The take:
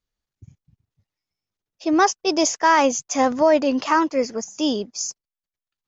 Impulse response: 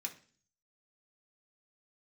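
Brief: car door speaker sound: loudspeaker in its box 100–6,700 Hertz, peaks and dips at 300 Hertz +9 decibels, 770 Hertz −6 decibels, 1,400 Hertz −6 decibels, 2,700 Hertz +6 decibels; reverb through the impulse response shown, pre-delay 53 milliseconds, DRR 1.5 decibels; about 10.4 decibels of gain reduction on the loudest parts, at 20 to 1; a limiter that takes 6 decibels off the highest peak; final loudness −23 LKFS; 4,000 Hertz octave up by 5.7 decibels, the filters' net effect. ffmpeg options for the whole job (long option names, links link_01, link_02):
-filter_complex "[0:a]equalizer=frequency=4000:width_type=o:gain=7,acompressor=threshold=-21dB:ratio=20,alimiter=limit=-17dB:level=0:latency=1,asplit=2[link_01][link_02];[1:a]atrim=start_sample=2205,adelay=53[link_03];[link_02][link_03]afir=irnorm=-1:irlink=0,volume=0dB[link_04];[link_01][link_04]amix=inputs=2:normalize=0,highpass=100,equalizer=frequency=300:width_type=q:width=4:gain=9,equalizer=frequency=770:width_type=q:width=4:gain=-6,equalizer=frequency=1400:width_type=q:width=4:gain=-6,equalizer=frequency=2700:width_type=q:width=4:gain=6,lowpass=frequency=6700:width=0.5412,lowpass=frequency=6700:width=1.3066"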